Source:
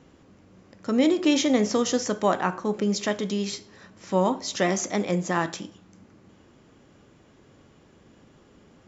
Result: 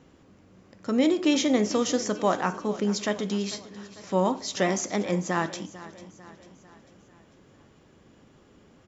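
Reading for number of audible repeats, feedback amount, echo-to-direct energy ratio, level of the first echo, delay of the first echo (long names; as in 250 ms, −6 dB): 4, 52%, −15.5 dB, −17.0 dB, 446 ms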